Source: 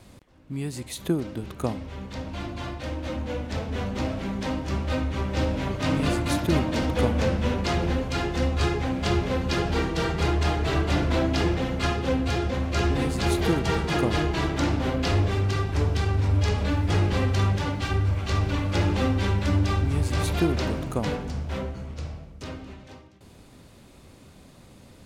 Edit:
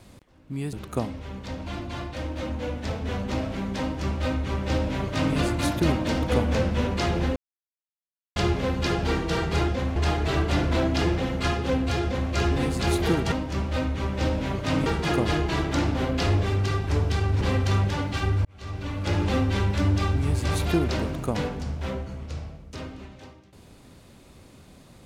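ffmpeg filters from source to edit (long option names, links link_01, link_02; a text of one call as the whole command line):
ffmpeg -i in.wav -filter_complex "[0:a]asplit=10[link_01][link_02][link_03][link_04][link_05][link_06][link_07][link_08][link_09][link_10];[link_01]atrim=end=0.732[link_11];[link_02]atrim=start=1.398:end=8.03,asetpts=PTS-STARTPTS,afade=type=out:start_time=6.628:duration=0.004:curve=hsin[link_12];[link_03]atrim=start=8.03:end=9.03,asetpts=PTS-STARTPTS,volume=0[link_13];[link_04]atrim=start=9.03:end=10.352,asetpts=PTS-STARTPTS,afade=type=in:duration=0.004:curve=hsin[link_14];[link_05]atrim=start=12.428:end=12.712[link_15];[link_06]atrim=start=10.348:end=13.712[link_16];[link_07]atrim=start=4.478:end=6.022[link_17];[link_08]atrim=start=13.708:end=16.262[link_18];[link_09]atrim=start=17.088:end=18.13,asetpts=PTS-STARTPTS,afade=type=out:start_time=1.038:duration=0.004:curve=hsin[link_19];[link_10]atrim=start=18.13,asetpts=PTS-STARTPTS,afade=type=in:duration=0.83[link_20];[link_12][link_13][link_14]concat=n=3:v=0:a=1[link_21];[link_11][link_21]acrossfade=duration=0.004:curve1=hsin:curve2=hsin[link_22];[link_22][link_15]acrossfade=duration=0.004:curve1=hsin:curve2=hsin[link_23];[link_23][link_16]acrossfade=duration=0.004:curve1=hsin:curve2=hsin[link_24];[link_24][link_17]acrossfade=duration=0.004:curve1=hsin:curve2=hsin[link_25];[link_25][link_18]acrossfade=duration=0.004:curve1=hsin:curve2=hsin[link_26];[link_19][link_20]concat=n=2:v=0:a=1[link_27];[link_26][link_27]acrossfade=duration=0.004:curve1=hsin:curve2=hsin" out.wav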